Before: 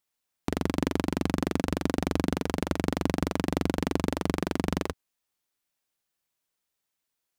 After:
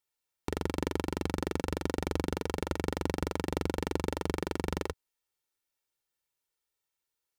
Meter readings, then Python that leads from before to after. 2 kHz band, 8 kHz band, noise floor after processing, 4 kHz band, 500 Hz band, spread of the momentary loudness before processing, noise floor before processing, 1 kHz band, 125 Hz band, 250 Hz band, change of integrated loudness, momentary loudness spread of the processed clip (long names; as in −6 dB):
−4.0 dB, −3.5 dB, below −85 dBFS, −4.0 dB, −2.5 dB, 3 LU, −83 dBFS, −3.5 dB, −4.5 dB, −7.0 dB, −5.0 dB, 3 LU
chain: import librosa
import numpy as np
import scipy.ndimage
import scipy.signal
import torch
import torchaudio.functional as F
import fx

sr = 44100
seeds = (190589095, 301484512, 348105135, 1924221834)

y = x + 0.47 * np.pad(x, (int(2.2 * sr / 1000.0), 0))[:len(x)]
y = F.gain(torch.from_numpy(y), -4.5).numpy()